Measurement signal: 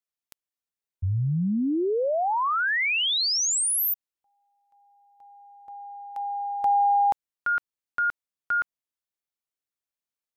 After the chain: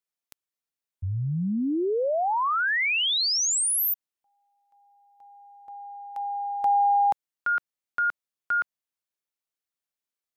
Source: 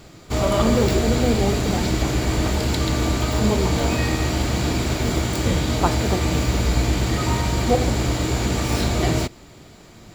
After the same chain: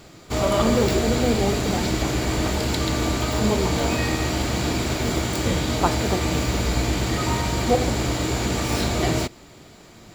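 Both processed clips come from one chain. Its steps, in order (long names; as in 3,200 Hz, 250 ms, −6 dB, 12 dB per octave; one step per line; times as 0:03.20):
low-shelf EQ 150 Hz −5 dB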